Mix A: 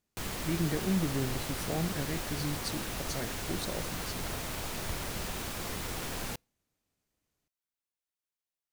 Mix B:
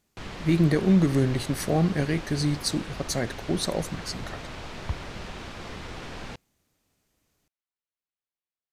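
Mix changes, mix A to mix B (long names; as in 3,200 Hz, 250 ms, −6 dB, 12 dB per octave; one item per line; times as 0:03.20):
speech +10.5 dB
background: add low-pass filter 4,100 Hz 12 dB per octave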